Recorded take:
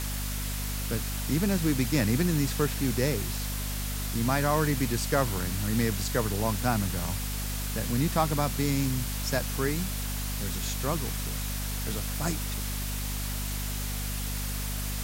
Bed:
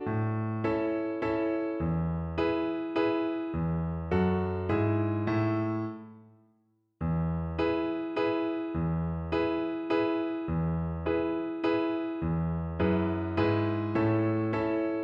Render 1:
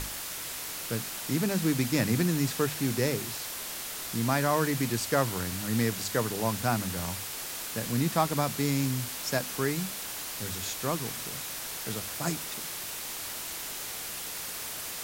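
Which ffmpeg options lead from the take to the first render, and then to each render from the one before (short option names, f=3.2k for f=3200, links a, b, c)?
-af "bandreject=f=50:t=h:w=6,bandreject=f=100:t=h:w=6,bandreject=f=150:t=h:w=6,bandreject=f=200:t=h:w=6,bandreject=f=250:t=h:w=6"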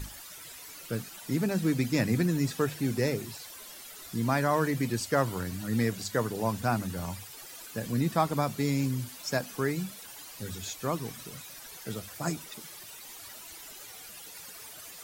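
-af "afftdn=nr=13:nf=-38"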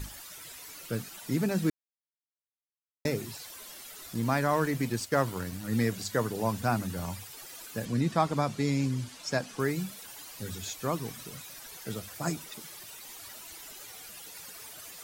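-filter_complex "[0:a]asettb=1/sr,asplit=3[a][b][c];[a]atrim=end=4.134[d];[b]atrim=start=4.13:end=5.72,asetpts=PTS-STARTPTS,afade=t=in:d=0.004:c=qsin,afade=t=out:st=1.586:d=0.004:c=qsin,aeval=exprs='sgn(val(0))*max(abs(val(0))-0.00473,0)':c=same[e];[c]atrim=start=5.716[f];[d][e]acrossfade=d=0.004:c1=hsin:c2=qsin[g];[g][f]acrossfade=d=0.004:c1=qsin:c2=hsin,asettb=1/sr,asplit=3[h][i][j];[h]atrim=end=7.854[k];[i]atrim=start=7.85:end=9.6,asetpts=PTS-STARTPTS,afade=t=in:d=0.004:c=qsin,afade=t=out:st=1.746:d=0.004:c=qsin,lowpass=8k[l];[j]atrim=start=9.596[m];[k][l]acrossfade=d=0.004:c1=hsin:c2=qsin[n];[n][m]acrossfade=d=0.004:c1=qsin:c2=hsin,asplit=3[o][p][q];[o]atrim=end=1.7,asetpts=PTS-STARTPTS,afade=t=out:st=1.696:d=0.004:c=hsin[r];[p]atrim=start=1.7:end=3.05,asetpts=PTS-STARTPTS,volume=0[s];[q]atrim=start=3.05,asetpts=PTS-STARTPTS,afade=t=in:d=0.004:c=hsin[t];[r][s][t]concat=n=3:v=0:a=1"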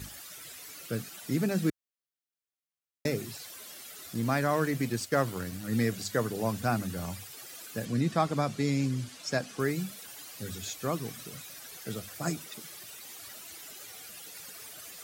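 -af "highpass=76,equalizer=f=940:t=o:w=0.25:g=-7"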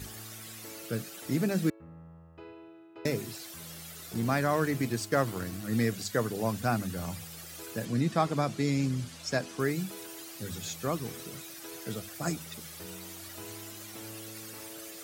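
-filter_complex "[1:a]volume=-20dB[a];[0:a][a]amix=inputs=2:normalize=0"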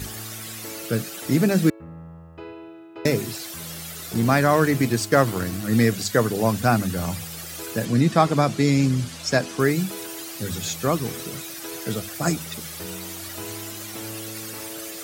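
-af "volume=9.5dB"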